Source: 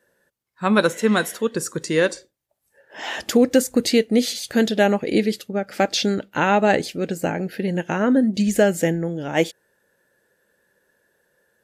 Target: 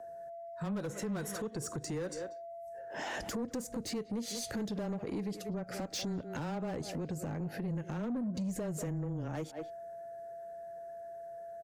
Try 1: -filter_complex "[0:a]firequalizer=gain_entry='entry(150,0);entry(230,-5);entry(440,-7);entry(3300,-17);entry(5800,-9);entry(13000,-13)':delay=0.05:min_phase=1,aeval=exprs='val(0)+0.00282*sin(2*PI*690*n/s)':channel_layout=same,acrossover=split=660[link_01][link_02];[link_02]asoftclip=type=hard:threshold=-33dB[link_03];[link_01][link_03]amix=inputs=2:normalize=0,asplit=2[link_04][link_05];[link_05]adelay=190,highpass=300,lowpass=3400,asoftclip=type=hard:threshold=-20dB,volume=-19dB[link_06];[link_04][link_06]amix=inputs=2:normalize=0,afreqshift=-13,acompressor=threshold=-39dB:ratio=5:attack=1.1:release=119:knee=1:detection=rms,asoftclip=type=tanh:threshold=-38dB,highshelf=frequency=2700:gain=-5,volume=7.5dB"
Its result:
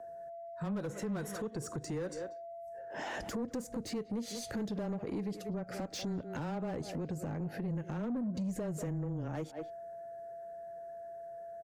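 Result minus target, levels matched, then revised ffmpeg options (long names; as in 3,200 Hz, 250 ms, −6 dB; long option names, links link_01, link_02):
4,000 Hz band −3.0 dB
-filter_complex "[0:a]firequalizer=gain_entry='entry(150,0);entry(230,-5);entry(440,-7);entry(3300,-17);entry(5800,-9);entry(13000,-13)':delay=0.05:min_phase=1,aeval=exprs='val(0)+0.00282*sin(2*PI*690*n/s)':channel_layout=same,acrossover=split=660[link_01][link_02];[link_02]asoftclip=type=hard:threshold=-33dB[link_03];[link_01][link_03]amix=inputs=2:normalize=0,asplit=2[link_04][link_05];[link_05]adelay=190,highpass=300,lowpass=3400,asoftclip=type=hard:threshold=-20dB,volume=-19dB[link_06];[link_04][link_06]amix=inputs=2:normalize=0,afreqshift=-13,acompressor=threshold=-39dB:ratio=5:attack=1.1:release=119:knee=1:detection=rms,asoftclip=type=tanh:threshold=-38dB,volume=7.5dB"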